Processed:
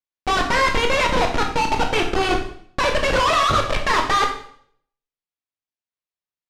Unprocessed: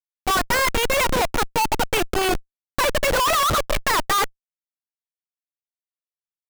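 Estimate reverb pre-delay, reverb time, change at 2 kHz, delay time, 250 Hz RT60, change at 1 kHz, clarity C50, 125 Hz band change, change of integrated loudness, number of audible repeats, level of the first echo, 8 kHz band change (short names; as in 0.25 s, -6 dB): 15 ms, 0.55 s, +2.0 dB, none, 0.70 s, +2.0 dB, 7.5 dB, +2.5 dB, +1.5 dB, none, none, -5.5 dB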